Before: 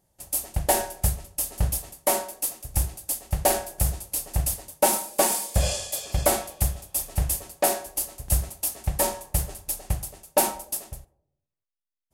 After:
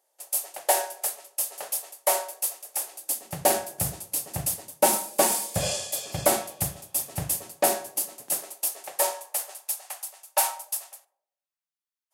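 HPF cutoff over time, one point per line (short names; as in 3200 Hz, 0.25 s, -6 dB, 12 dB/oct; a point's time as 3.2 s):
HPF 24 dB/oct
2.92 s 470 Hz
3.46 s 110 Hz
7.86 s 110 Hz
8.42 s 330 Hz
9.83 s 730 Hz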